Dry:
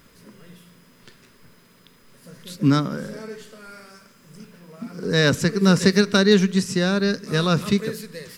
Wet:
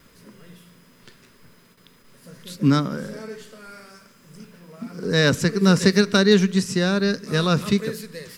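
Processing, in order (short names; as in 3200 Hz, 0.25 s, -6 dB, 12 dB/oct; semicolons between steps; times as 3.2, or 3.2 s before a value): gate with hold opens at -44 dBFS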